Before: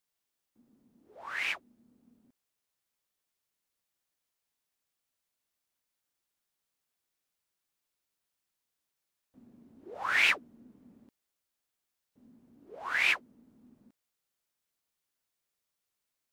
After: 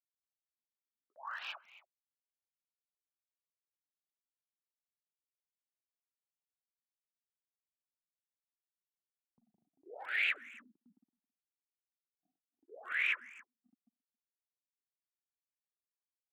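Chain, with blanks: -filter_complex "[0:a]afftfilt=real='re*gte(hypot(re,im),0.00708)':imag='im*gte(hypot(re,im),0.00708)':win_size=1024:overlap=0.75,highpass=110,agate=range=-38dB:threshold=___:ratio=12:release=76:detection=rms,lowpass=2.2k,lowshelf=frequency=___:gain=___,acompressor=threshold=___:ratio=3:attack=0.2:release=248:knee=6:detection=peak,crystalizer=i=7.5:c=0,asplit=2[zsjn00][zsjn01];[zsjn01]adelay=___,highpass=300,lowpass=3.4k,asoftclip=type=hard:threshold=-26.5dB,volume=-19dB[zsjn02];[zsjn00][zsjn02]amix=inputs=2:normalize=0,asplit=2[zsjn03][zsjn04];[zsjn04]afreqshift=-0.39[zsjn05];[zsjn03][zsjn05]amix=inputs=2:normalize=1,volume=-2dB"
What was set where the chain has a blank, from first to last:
-58dB, 410, -8.5, -34dB, 270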